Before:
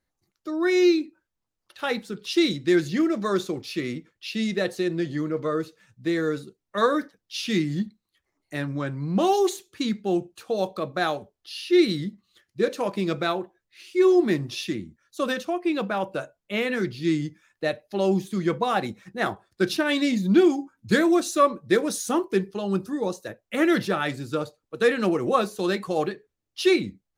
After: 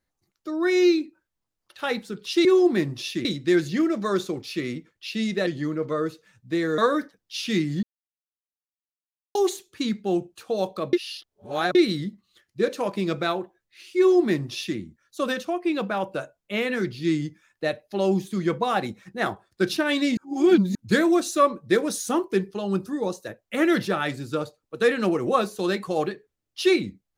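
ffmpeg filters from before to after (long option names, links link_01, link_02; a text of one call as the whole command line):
ffmpeg -i in.wav -filter_complex "[0:a]asplit=11[link_01][link_02][link_03][link_04][link_05][link_06][link_07][link_08][link_09][link_10][link_11];[link_01]atrim=end=2.452[link_12];[link_02]atrim=start=13.978:end=14.782[link_13];[link_03]atrim=start=2.448:end=4.672[link_14];[link_04]atrim=start=5.008:end=6.322[link_15];[link_05]atrim=start=6.778:end=7.83,asetpts=PTS-STARTPTS,afade=type=out:start_time=1.048:duration=0.004:curve=hsin[link_16];[link_06]atrim=start=7.83:end=9.35,asetpts=PTS-STARTPTS,volume=0[link_17];[link_07]atrim=start=9.35:end=10.932,asetpts=PTS-STARTPTS,afade=type=in:duration=0.004:curve=hsin[link_18];[link_08]atrim=start=10.928:end=11.752,asetpts=PTS-STARTPTS,areverse[link_19];[link_09]atrim=start=11.748:end=20.172[link_20];[link_10]atrim=start=20.168:end=20.752,asetpts=PTS-STARTPTS,areverse[link_21];[link_11]atrim=start=20.748[link_22];[link_12][link_13]acrossfade=duration=0.004:curve1=hsin:curve2=hsin[link_23];[link_23][link_14]acrossfade=duration=0.004:curve1=hsin:curve2=hsin[link_24];[link_24][link_15]acrossfade=duration=0.004:curve1=hsin:curve2=hsin[link_25];[link_16][link_17][link_18]concat=n=3:v=0:a=1[link_26];[link_25][link_26]acrossfade=duration=0.004:curve1=hsin:curve2=hsin[link_27];[link_27][link_19]acrossfade=duration=0.004:curve1=hsin:curve2=hsin[link_28];[link_28][link_20]acrossfade=duration=0.004:curve1=hsin:curve2=hsin[link_29];[link_29][link_21]acrossfade=duration=0.004:curve1=hsin:curve2=hsin[link_30];[link_30][link_22]acrossfade=duration=0.004:curve1=hsin:curve2=hsin" out.wav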